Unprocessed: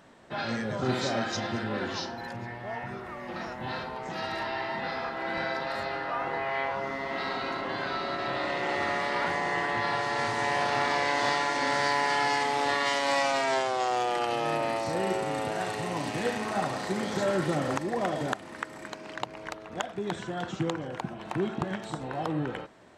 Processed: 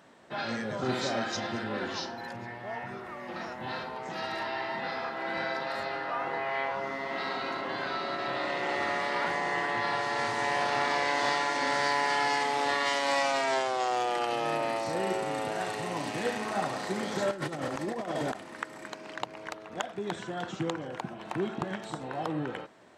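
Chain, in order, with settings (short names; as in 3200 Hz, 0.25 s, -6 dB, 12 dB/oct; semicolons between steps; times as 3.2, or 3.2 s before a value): HPF 160 Hz 6 dB/oct; 17.31–18.43 negative-ratio compressor -32 dBFS, ratio -0.5; gain -1 dB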